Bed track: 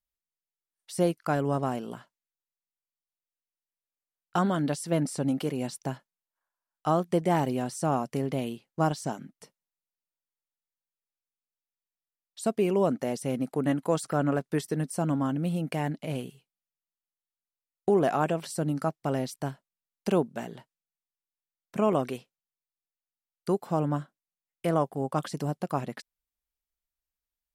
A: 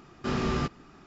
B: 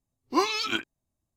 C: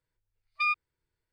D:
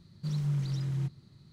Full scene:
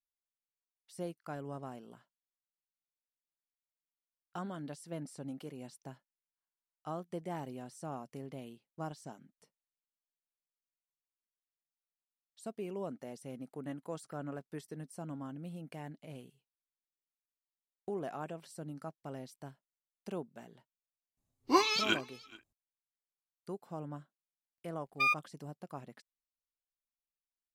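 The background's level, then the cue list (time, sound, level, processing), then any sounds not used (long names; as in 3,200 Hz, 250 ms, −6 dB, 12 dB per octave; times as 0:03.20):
bed track −15.5 dB
0:21.17: mix in B −2.5 dB + single-tap delay 428 ms −23.5 dB
0:24.40: mix in C −1 dB + mu-law and A-law mismatch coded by A
not used: A, D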